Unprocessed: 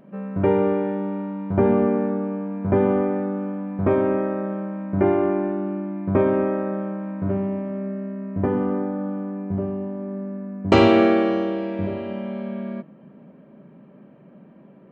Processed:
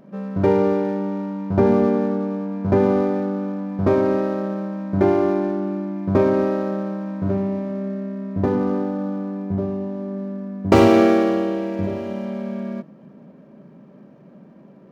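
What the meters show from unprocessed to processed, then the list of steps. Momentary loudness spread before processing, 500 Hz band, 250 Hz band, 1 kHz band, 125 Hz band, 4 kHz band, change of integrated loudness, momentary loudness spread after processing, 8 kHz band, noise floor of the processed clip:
11 LU, +2.0 dB, +2.0 dB, +1.5 dB, +2.0 dB, −2.0 dB, +2.0 dB, 11 LU, can't be measured, −47 dBFS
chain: running median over 15 samples
level +2 dB

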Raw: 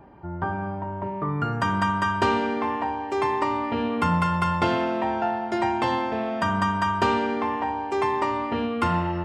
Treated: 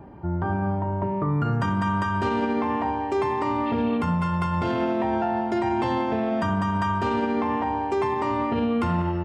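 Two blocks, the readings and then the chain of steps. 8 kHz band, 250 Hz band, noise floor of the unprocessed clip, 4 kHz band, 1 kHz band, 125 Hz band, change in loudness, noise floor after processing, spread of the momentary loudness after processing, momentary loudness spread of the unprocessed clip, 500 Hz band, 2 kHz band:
can't be measured, +2.5 dB, −32 dBFS, −5.0 dB, −1.5 dB, +3.0 dB, 0.0 dB, −28 dBFS, 2 LU, 6 LU, +1.0 dB, −3.5 dB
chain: healed spectral selection 0:03.69–0:03.95, 2,200–4,400 Hz after
high-pass filter 43 Hz
low-shelf EQ 470 Hz +8.5 dB
brickwall limiter −16.5 dBFS, peak gain reduction 11 dB
slap from a distant wall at 33 metres, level −17 dB

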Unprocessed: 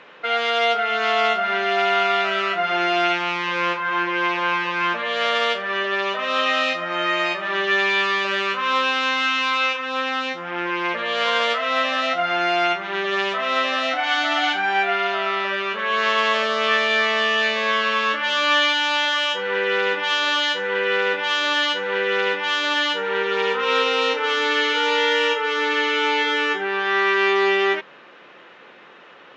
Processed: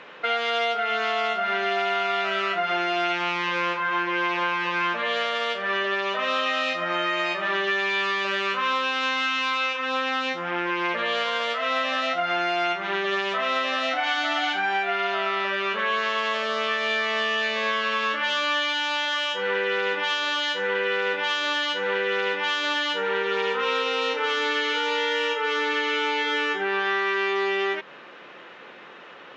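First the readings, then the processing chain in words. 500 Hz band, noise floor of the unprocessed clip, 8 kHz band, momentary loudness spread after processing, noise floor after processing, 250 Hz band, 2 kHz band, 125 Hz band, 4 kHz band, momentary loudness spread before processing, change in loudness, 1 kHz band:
−4.0 dB, −46 dBFS, can't be measured, 2 LU, −44 dBFS, −3.5 dB, −4.0 dB, −2.5 dB, −4.5 dB, 4 LU, −4.0 dB, −4.0 dB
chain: downward compressor, threshold −23 dBFS, peak gain reduction 9 dB
level +1.5 dB

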